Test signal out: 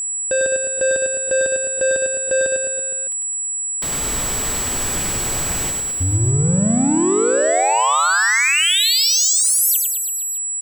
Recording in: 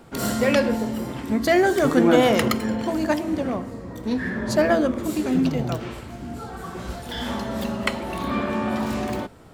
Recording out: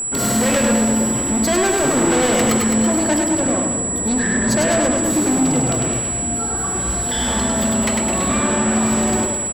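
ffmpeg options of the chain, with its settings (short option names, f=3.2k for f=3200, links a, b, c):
-af "volume=23.5dB,asoftclip=hard,volume=-23.5dB,aecho=1:1:100|210|331|464.1|610.5:0.631|0.398|0.251|0.158|0.1,aeval=exprs='val(0)+0.0447*sin(2*PI*7800*n/s)':c=same,volume=6dB"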